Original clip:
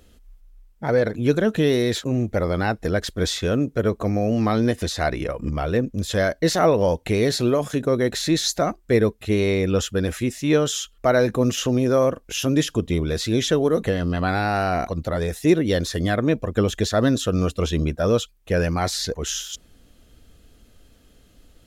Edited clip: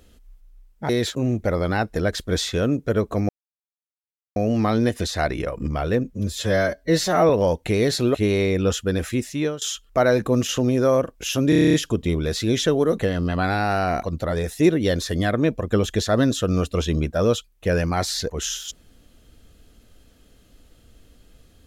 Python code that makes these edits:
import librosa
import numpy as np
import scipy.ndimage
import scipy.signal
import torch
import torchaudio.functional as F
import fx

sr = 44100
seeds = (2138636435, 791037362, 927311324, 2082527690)

y = fx.edit(x, sr, fx.cut(start_s=0.89, length_s=0.89),
    fx.insert_silence(at_s=4.18, length_s=1.07),
    fx.stretch_span(start_s=5.87, length_s=0.83, factor=1.5),
    fx.cut(start_s=7.55, length_s=1.68),
    fx.fade_out_to(start_s=10.34, length_s=0.36, floor_db=-17.5),
    fx.stutter(start_s=12.58, slice_s=0.03, count=9), tone=tone)